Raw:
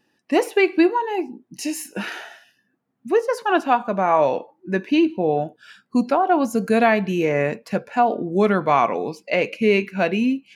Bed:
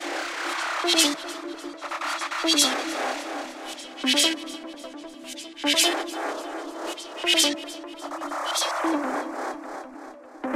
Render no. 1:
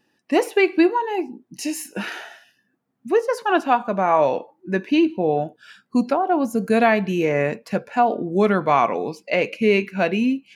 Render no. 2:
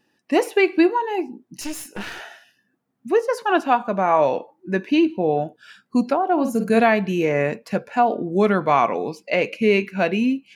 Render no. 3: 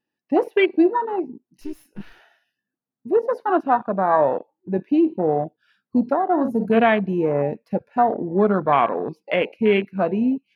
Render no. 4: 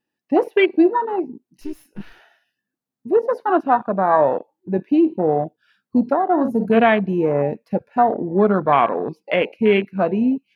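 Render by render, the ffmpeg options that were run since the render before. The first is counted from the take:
-filter_complex "[0:a]asettb=1/sr,asplit=3[s0][s1][s2];[s0]atrim=end=6.134[s3];[s1]atrim=start=6.13:end=6.7,asetpts=PTS-STARTPTS,afade=t=in:d=0.004:c=qsin,afade=t=out:st=0.566:d=0.004:c=qsin,equalizer=f=3000:w=0.32:g=-6[s4];[s2]atrim=start=6.696[s5];[s3][s4]acrossfade=d=0.004:c1=hsin:c2=qsin[s6];[s6][s5]acrossfade=d=0.004:c1=qsin:c2=hsin"
-filter_complex "[0:a]asettb=1/sr,asplit=3[s0][s1][s2];[s0]atrim=end=1.614[s3];[s1]atrim=start=1.61:end=2.2,asetpts=PTS-STARTPTS,afade=t=in:d=0.004:c=qsin,afade=t=out:st=0.586:d=0.004:c=qsin,aeval=exprs='clip(val(0),-1,0.0133)':c=same[s4];[s2]atrim=start=2.196[s5];[s3][s4]acrossfade=d=0.004:c1=hsin:c2=qsin[s6];[s6][s5]acrossfade=d=0.004:c1=qsin:c2=hsin,asettb=1/sr,asplit=3[s7][s8][s9];[s7]atrim=end=6.334[s10];[s8]atrim=start=6.33:end=6.8,asetpts=PTS-STARTPTS,afade=t=in:d=0.004:c=qsin,afade=t=out:st=0.466:d=0.004:c=qsin,asplit=2[s11][s12];[s12]adelay=49,volume=0.473[s13];[s11][s13]amix=inputs=2:normalize=0,atrim=end_sample=20727[s14];[s9]atrim=start=6.796[s15];[s10][s14]acrossfade=d=0.004:c1=hsin:c2=qsin[s16];[s16][s15]acrossfade=d=0.004:c1=qsin:c2=hsin"
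-af "afwtdn=0.0708,equalizer=f=7500:t=o:w=0.54:g=-13"
-af "volume=1.26"

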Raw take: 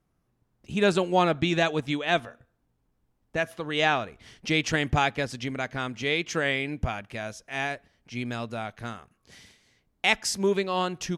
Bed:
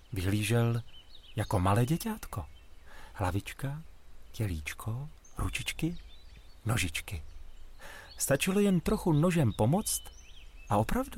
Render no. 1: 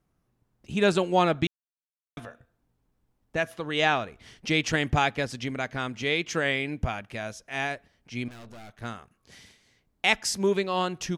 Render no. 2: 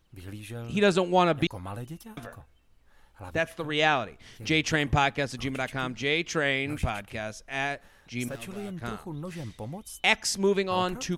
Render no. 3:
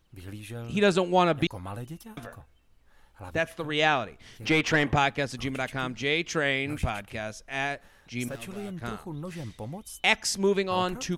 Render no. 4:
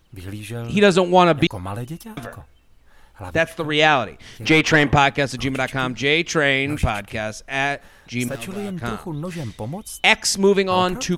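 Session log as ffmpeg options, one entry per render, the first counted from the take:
-filter_complex "[0:a]asettb=1/sr,asplit=3[s0][s1][s2];[s0]atrim=end=8.284[s3];[s1]atrim=start=8.28:end=8.82,asetpts=PTS-STARTPTS,afade=t=in:d=0.004:c=qsin,afade=t=out:st=0.536:d=0.004:c=qsin,aeval=exprs='(tanh(158*val(0)+0.65)-tanh(0.65))/158':c=same[s4];[s2]atrim=start=8.816[s5];[s3][s4]acrossfade=d=0.004:c1=hsin:c2=qsin[s6];[s6][s5]acrossfade=d=0.004:c1=qsin:c2=hsin,asplit=3[s7][s8][s9];[s7]atrim=end=1.47,asetpts=PTS-STARTPTS,afade=t=out:st=1.466:d=0.004:c=hsin[s10];[s8]atrim=start=1.47:end=2.17,asetpts=PTS-STARTPTS,volume=0[s11];[s9]atrim=start=2.17,asetpts=PTS-STARTPTS,afade=t=in:d=0.004:c=hsin[s12];[s10][s11][s12]concat=n=3:v=0:a=1"
-filter_complex "[1:a]volume=0.282[s0];[0:a][s0]amix=inputs=2:normalize=0"
-filter_complex "[0:a]asettb=1/sr,asplit=3[s0][s1][s2];[s0]atrim=end=4.464[s3];[s1]atrim=start=4.46:end=4.96,asetpts=PTS-STARTPTS,afade=t=in:d=0.004:c=qsin,afade=t=out:st=0.496:d=0.004:c=qsin,asplit=2[s4][s5];[s5]highpass=f=720:p=1,volume=7.08,asoftclip=type=tanh:threshold=0.335[s6];[s4][s6]amix=inputs=2:normalize=0,lowpass=f=1400:p=1,volume=0.501[s7];[s2]atrim=start=4.956[s8];[s3][s7]acrossfade=d=0.004:c1=hsin:c2=qsin[s9];[s9][s8]acrossfade=d=0.004:c1=qsin:c2=hsin"
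-af "volume=2.66,alimiter=limit=0.794:level=0:latency=1"

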